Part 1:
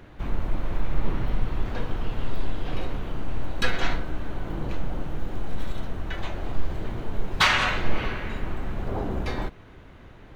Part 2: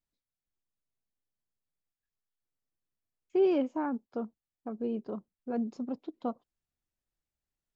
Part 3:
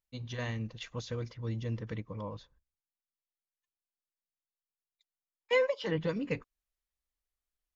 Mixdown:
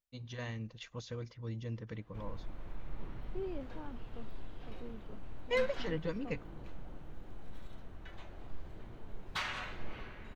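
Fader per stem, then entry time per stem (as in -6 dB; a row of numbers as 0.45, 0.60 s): -18.0, -16.0, -5.0 dB; 1.95, 0.00, 0.00 s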